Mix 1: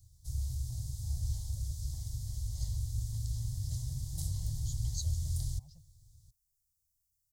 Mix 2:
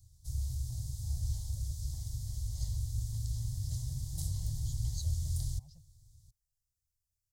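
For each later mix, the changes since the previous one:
second voice: add treble shelf 6.5 kHz -12 dB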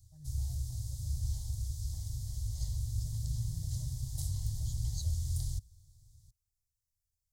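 first voice: entry -0.65 s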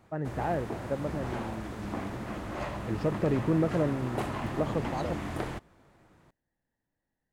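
second voice -12.0 dB; background -9.0 dB; master: remove inverse Chebyshev band-stop 200–2700 Hz, stop band 40 dB

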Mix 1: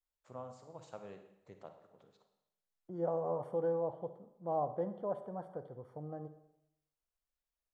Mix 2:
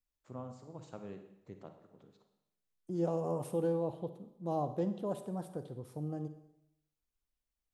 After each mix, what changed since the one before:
second voice: remove Savitzky-Golay filter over 41 samples; master: add resonant low shelf 420 Hz +6.5 dB, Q 1.5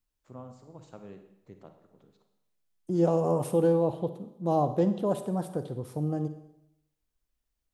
second voice +9.0 dB

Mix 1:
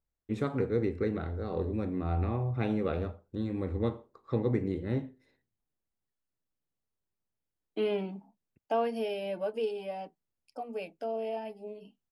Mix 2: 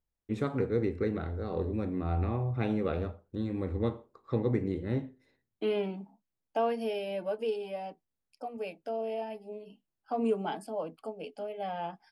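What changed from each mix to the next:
second voice: entry -2.15 s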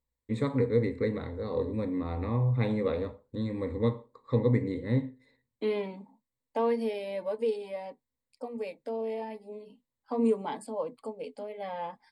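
second voice: add treble shelf 8.4 kHz +3.5 dB; master: add rippled EQ curve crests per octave 1, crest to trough 12 dB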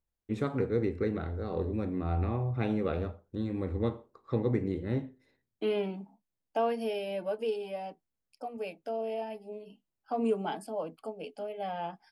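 master: remove rippled EQ curve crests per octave 1, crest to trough 12 dB

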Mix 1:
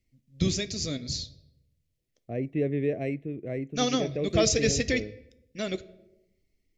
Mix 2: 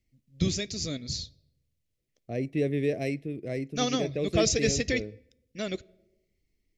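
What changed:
first voice: send -9.0 dB; second voice: remove boxcar filter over 9 samples

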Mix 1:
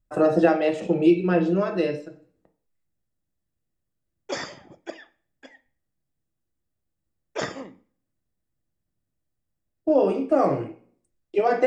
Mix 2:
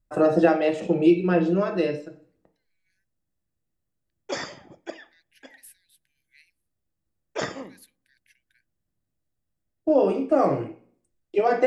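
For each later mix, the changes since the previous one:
second voice: unmuted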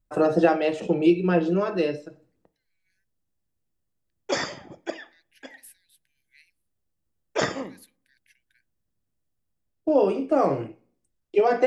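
first voice: send -7.5 dB; background +4.5 dB

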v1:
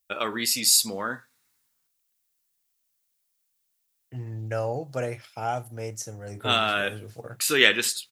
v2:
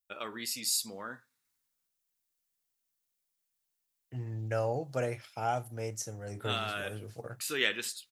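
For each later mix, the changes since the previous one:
first voice -11.5 dB; second voice -3.0 dB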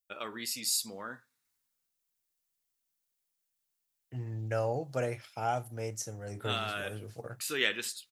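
no change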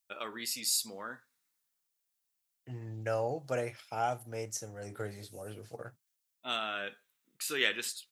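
second voice: entry -1.45 s; master: add bass shelf 160 Hz -7.5 dB

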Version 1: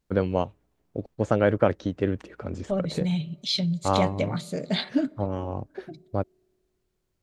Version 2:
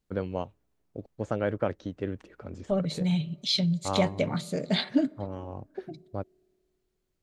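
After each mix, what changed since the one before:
first voice -7.5 dB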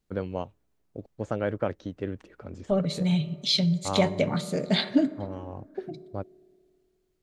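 second voice: send +11.0 dB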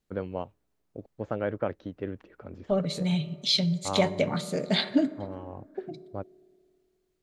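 first voice: add distance through air 210 m; master: add bass shelf 210 Hz -4.5 dB

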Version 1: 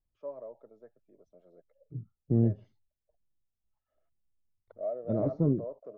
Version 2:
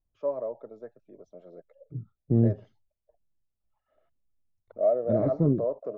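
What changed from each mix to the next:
first voice +11.0 dB; second voice +3.0 dB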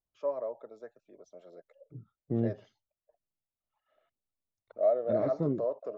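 master: add tilt EQ +3.5 dB/octave

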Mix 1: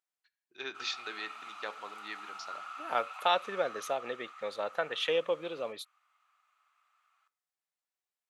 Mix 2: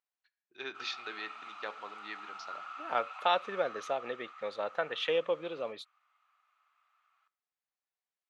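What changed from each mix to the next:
master: add distance through air 94 m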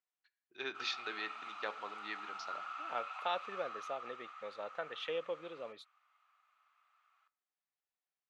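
second voice -8.5 dB

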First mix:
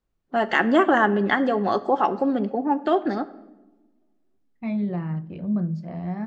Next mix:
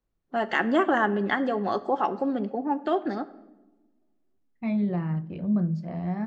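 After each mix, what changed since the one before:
first voice -4.5 dB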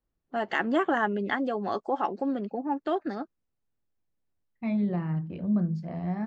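reverb: off

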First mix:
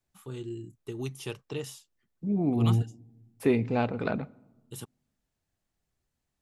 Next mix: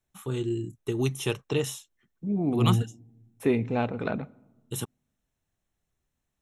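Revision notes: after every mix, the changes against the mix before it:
first voice +8.5 dB; master: add Butterworth band-stop 4.7 kHz, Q 5.6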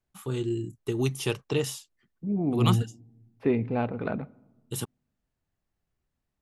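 second voice: add distance through air 310 m; master: remove Butterworth band-stop 4.7 kHz, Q 5.6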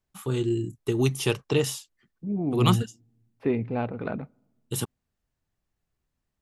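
first voice +3.5 dB; second voice: send -9.5 dB

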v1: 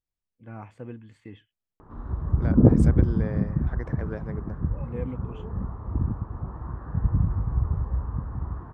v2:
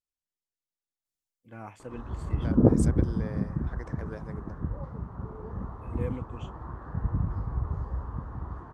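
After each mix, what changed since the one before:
first voice: entry +1.05 s; second voice -5.0 dB; master: add tone controls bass -6 dB, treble +14 dB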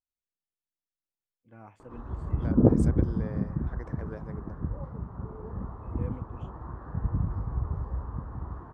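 first voice -6.0 dB; master: add treble shelf 2.6 kHz -10 dB

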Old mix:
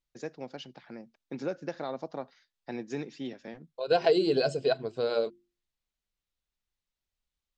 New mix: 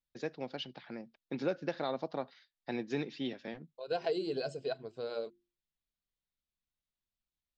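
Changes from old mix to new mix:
first voice: add resonant low-pass 3.9 kHz, resonance Q 1.7; second voice -10.0 dB

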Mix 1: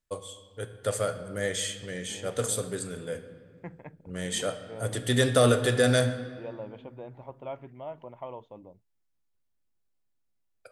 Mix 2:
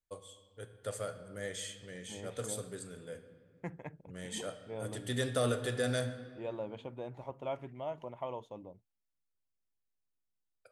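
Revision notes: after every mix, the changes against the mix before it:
first voice -10.5 dB; second voice: remove low-pass 3 kHz 12 dB/octave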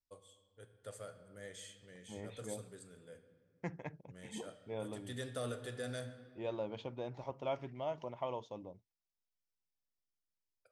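first voice -9.5 dB; second voice: add resonant low-pass 5.4 kHz, resonance Q 3.7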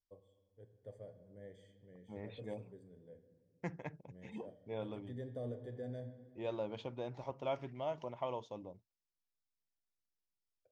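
first voice: add boxcar filter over 33 samples

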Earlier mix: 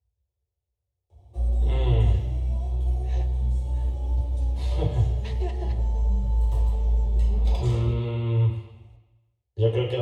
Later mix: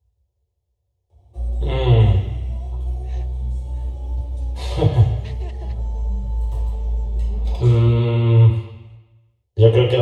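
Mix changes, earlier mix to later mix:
first voice +10.0 dB; second voice: send off

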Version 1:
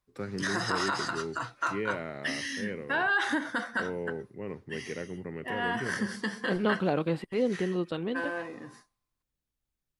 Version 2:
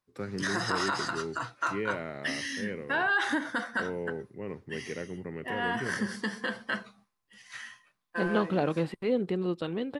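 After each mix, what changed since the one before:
second voice: entry +1.70 s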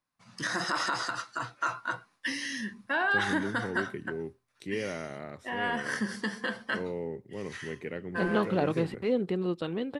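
first voice: entry +2.95 s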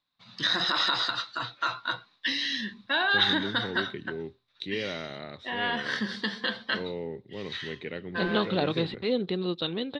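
master: add resonant low-pass 3.8 kHz, resonance Q 9.1

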